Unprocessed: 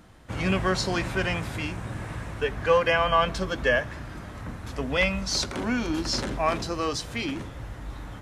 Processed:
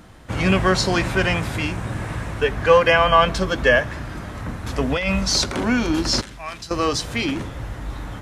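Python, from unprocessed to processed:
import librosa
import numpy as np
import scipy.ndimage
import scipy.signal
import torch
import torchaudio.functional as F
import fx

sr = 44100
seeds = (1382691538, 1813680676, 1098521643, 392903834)

y = fx.over_compress(x, sr, threshold_db=-27.0, ratio=-1.0, at=(4.66, 5.32))
y = fx.tone_stack(y, sr, knobs='5-5-5', at=(6.21, 6.71))
y = y * 10.0 ** (7.0 / 20.0)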